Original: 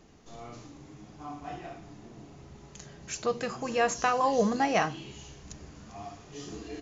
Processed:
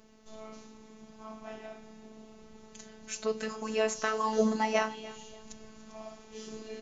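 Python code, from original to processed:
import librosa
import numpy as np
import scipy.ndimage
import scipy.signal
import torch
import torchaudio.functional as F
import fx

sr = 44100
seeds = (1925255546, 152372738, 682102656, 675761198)

y = fx.robotise(x, sr, hz=218.0)
y = fx.echo_feedback(y, sr, ms=291, feedback_pct=36, wet_db=-19)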